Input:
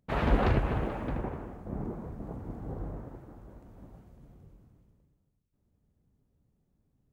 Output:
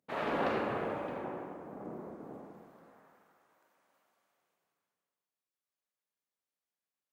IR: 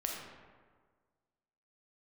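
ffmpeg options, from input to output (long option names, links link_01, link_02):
-filter_complex "[0:a]asetnsamples=nb_out_samples=441:pad=0,asendcmd='2.39 highpass f 1500',highpass=290[link_01];[1:a]atrim=start_sample=2205,asetrate=38808,aresample=44100[link_02];[link_01][link_02]afir=irnorm=-1:irlink=0,volume=-5dB"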